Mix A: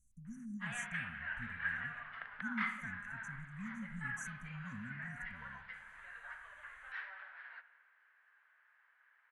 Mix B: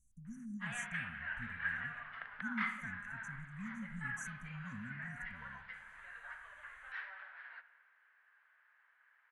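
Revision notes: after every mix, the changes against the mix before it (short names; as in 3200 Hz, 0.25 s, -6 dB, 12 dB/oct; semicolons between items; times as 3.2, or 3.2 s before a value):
none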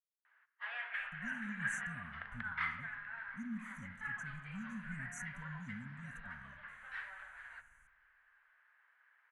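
speech: entry +0.95 s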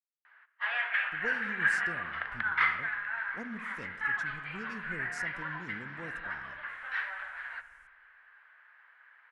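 speech: remove brick-wall FIR band-stop 270–5800 Hz; background +11.0 dB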